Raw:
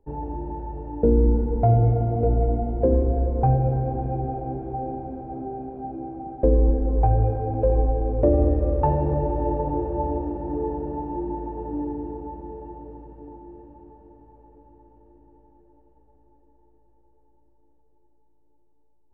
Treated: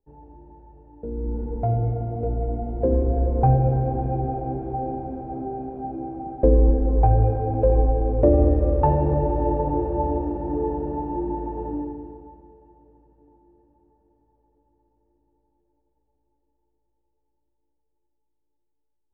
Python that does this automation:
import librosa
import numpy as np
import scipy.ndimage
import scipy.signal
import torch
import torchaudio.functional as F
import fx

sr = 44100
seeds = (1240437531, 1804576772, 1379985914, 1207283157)

y = fx.gain(x, sr, db=fx.line((1.04, -15.5), (1.45, -5.0), (2.38, -5.0), (3.34, 2.0), (11.68, 2.0), (11.94, -4.0), (12.6, -14.5)))